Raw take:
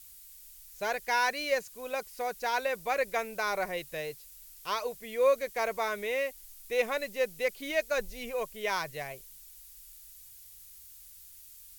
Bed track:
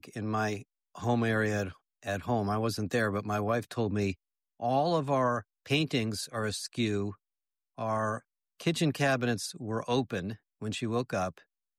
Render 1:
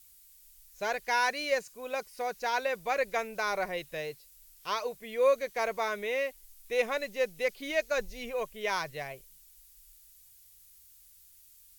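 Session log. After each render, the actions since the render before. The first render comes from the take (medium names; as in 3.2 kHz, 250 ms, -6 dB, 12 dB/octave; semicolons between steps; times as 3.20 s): noise print and reduce 6 dB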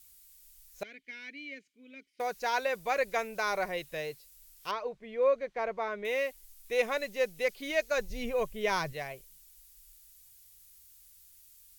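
0.83–2.20 s: vowel filter i; 4.71–6.05 s: tape spacing loss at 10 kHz 28 dB; 8.10–8.93 s: bass shelf 340 Hz +10 dB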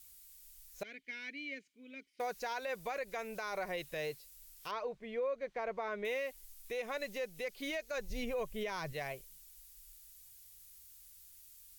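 compression 6:1, threshold -32 dBFS, peak gain reduction 10 dB; peak limiter -29.5 dBFS, peak gain reduction 7.5 dB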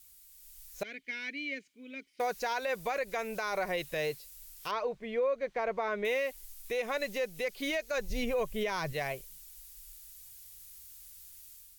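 level rider gain up to 6 dB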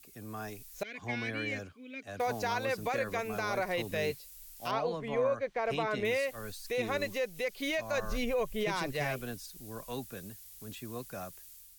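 add bed track -11 dB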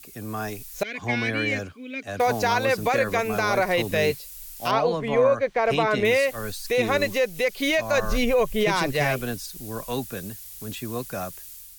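trim +10.5 dB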